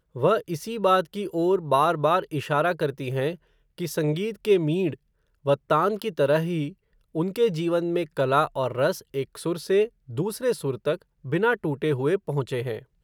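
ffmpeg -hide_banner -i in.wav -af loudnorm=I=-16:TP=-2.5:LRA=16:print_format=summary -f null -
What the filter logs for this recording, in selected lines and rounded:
Input Integrated:    -25.5 LUFS
Input True Peak:      -6.8 dBTP
Input LRA:             2.0 LU
Input Threshold:     -35.6 LUFS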